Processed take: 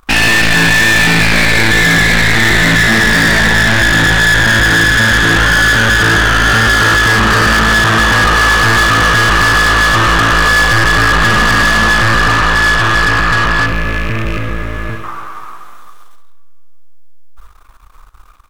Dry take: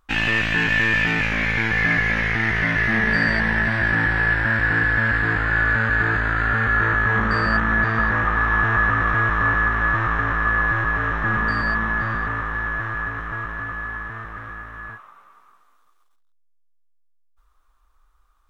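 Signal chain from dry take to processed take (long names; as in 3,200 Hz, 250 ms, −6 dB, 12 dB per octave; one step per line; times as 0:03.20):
loose part that buzzes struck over −35 dBFS, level −30 dBFS
gain on a spectral selection 0:13.66–0:15.04, 650–2,000 Hz −13 dB
in parallel at +2.5 dB: brickwall limiter −16.5 dBFS, peak gain reduction 9 dB
on the sum: spring reverb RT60 2 s, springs 42/57 ms, chirp 55 ms, DRR 16 dB
soft clipping −17.5 dBFS, distortion −10 dB
on a send: repeating echo 66 ms, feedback 49%, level −10.5 dB
on the sum: leveller curve on the samples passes 2
level +8 dB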